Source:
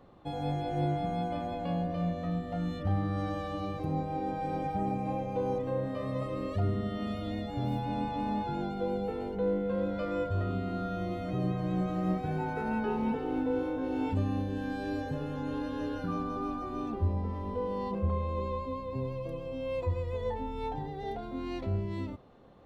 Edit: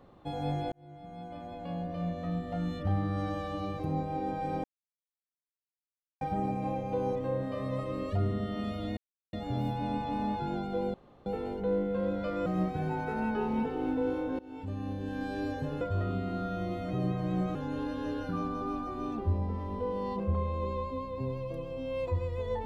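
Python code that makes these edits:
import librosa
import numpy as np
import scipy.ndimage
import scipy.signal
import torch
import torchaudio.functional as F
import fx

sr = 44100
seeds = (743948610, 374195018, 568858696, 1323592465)

y = fx.edit(x, sr, fx.fade_in_span(start_s=0.72, length_s=1.76),
    fx.insert_silence(at_s=4.64, length_s=1.57),
    fx.insert_silence(at_s=7.4, length_s=0.36),
    fx.insert_room_tone(at_s=9.01, length_s=0.32),
    fx.move(start_s=10.21, length_s=1.74, to_s=15.3),
    fx.fade_in_from(start_s=13.88, length_s=0.87, floor_db=-21.0), tone=tone)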